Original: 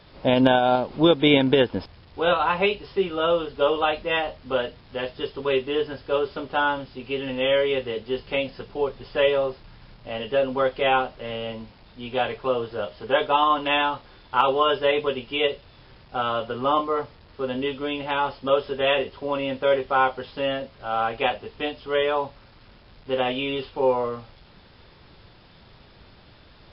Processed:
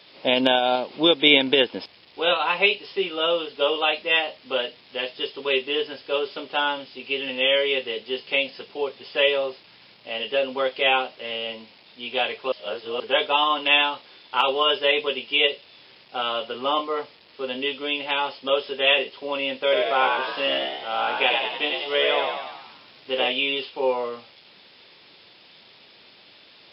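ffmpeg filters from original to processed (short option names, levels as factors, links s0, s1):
-filter_complex "[0:a]asettb=1/sr,asplit=3[s0][s1][s2];[s0]atrim=end=19.624[s3];[s1]atrim=start=19.62:end=23.28,asetpts=PTS-STARTPTS,afade=t=in:d=0.004:c=qsin,afade=t=out:st=3.656:d=0.004:c=qsin,asplit=9[s4][s5][s6][s7][s8][s9][s10][s11][s12];[s5]adelay=95,afreqshift=64,volume=0.668[s13];[s6]adelay=190,afreqshift=128,volume=0.376[s14];[s7]adelay=285,afreqshift=192,volume=0.209[s15];[s8]adelay=380,afreqshift=256,volume=0.117[s16];[s9]adelay=475,afreqshift=320,volume=0.0661[s17];[s10]adelay=570,afreqshift=384,volume=0.0367[s18];[s11]adelay=665,afreqshift=448,volume=0.0207[s19];[s12]adelay=760,afreqshift=512,volume=0.0115[s20];[s4][s13][s14][s15][s16][s17][s18][s19][s20]amix=inputs=9:normalize=0,atrim=end_sample=161406[s21];[s2]atrim=start=23.276[s22];[s3][s21]acrossfade=d=0.004:c1=hsin:c2=qsin[s23];[s23][s22]acrossfade=d=0.004:c1=qsin:c2=hsin,asplit=3[s24][s25][s26];[s24]atrim=end=12.522[s27];[s25]atrim=start=12.518:end=13.002,asetpts=PTS-STARTPTS,areverse[s28];[s26]atrim=start=12.998[s29];[s27][s28]acrossfade=d=0.004:c1=hsin:c2=hsin[s30];[s30][s29]acrossfade=d=0.004:c1=hsin:c2=hsin,highpass=290,highshelf=f=1900:t=q:w=1.5:g=6.5,volume=0.891"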